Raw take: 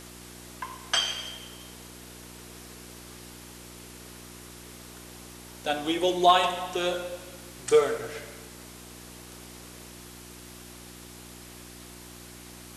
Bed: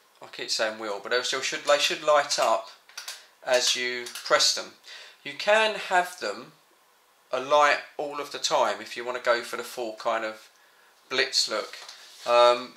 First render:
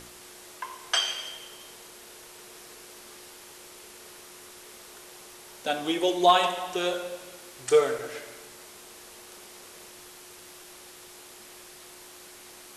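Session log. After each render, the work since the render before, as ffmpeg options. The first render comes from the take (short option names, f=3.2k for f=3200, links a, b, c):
-af "bandreject=f=60:t=h:w=4,bandreject=f=120:t=h:w=4,bandreject=f=180:t=h:w=4,bandreject=f=240:t=h:w=4,bandreject=f=300:t=h:w=4"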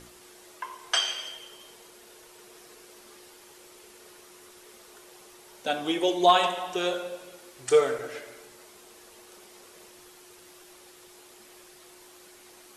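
-af "afftdn=nr=6:nf=-48"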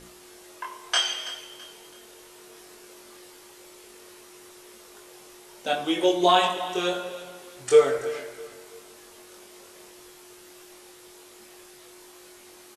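-filter_complex "[0:a]asplit=2[a][b];[b]adelay=22,volume=-2.5dB[c];[a][c]amix=inputs=2:normalize=0,aecho=1:1:330|660|990:0.15|0.0554|0.0205"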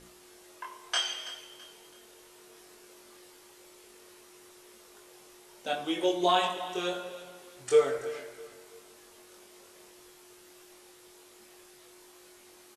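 -af "volume=-6dB"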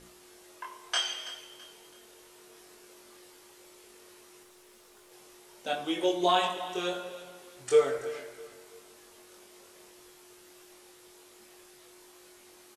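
-filter_complex "[0:a]asettb=1/sr,asplit=3[a][b][c];[a]atrim=end=4.434[d];[b]atrim=start=4.43:end=5.12,asetpts=PTS-STARTPTS,afade=t=in:d=0.004:c=qsin,afade=t=out:st=0.686:d=0.004:c=qsin,aeval=exprs='(tanh(355*val(0)+0.3)-tanh(0.3))/355':c=same[e];[c]atrim=start=5.116[f];[d][e]acrossfade=d=0.004:c1=hsin:c2=qsin[g];[g][f]acrossfade=d=0.004:c1=qsin:c2=hsin"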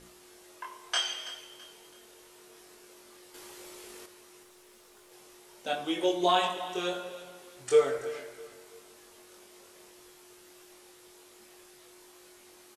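-filter_complex "[0:a]asettb=1/sr,asplit=3[a][b][c];[a]atrim=end=3.344[d];[b]atrim=start=3.34:end=4.06,asetpts=PTS-STARTPTS,afade=t=in:d=0.004:c=qsin,afade=t=out:st=0.716:d=0.004:c=qsin,acontrast=86[e];[c]atrim=start=4.056[f];[d][e]acrossfade=d=0.004:c1=hsin:c2=qsin[g];[g][f]acrossfade=d=0.004:c1=qsin:c2=hsin"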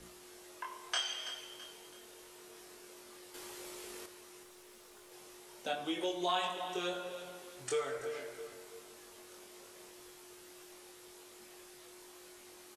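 -filter_complex "[0:a]acrossover=split=120|770|3700[a][b][c][d];[b]alimiter=level_in=1dB:limit=-24dB:level=0:latency=1:release=409,volume=-1dB[e];[a][e][c][d]amix=inputs=4:normalize=0,acompressor=threshold=-41dB:ratio=1.5"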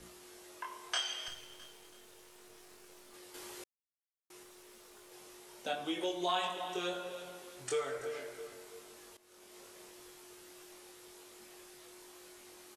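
-filter_complex "[0:a]asettb=1/sr,asplit=3[a][b][c];[a]atrim=end=1.284[d];[b]atrim=start=1.28:end=3.14,asetpts=PTS-STARTPTS,afade=t=in:d=0.004:c=qsin,afade=t=out:st=1.856:d=0.004:c=qsin,aeval=exprs='if(lt(val(0),0),0.251*val(0),val(0))':c=same[e];[c]atrim=start=3.136[f];[d][e]acrossfade=d=0.004:c1=hsin:c2=qsin[g];[g][f]acrossfade=d=0.004:c1=qsin:c2=hsin,asplit=4[h][i][j][k];[h]atrim=end=3.64,asetpts=PTS-STARTPTS,afade=t=out:st=3.636:d=0.004:c=hsin[l];[i]atrim=start=3.64:end=4.3,asetpts=PTS-STARTPTS,volume=0[m];[j]atrim=start=4.3:end=9.17,asetpts=PTS-STARTPTS,afade=t=in:d=0.004:c=hsin,afade=t=out:st=4.866:d=0.004:c=hsin:silence=0.133352[n];[k]atrim=start=9.17,asetpts=PTS-STARTPTS,afade=t=in:d=0.42:silence=0.133352[o];[l][m][n][o]concat=n=4:v=0:a=1"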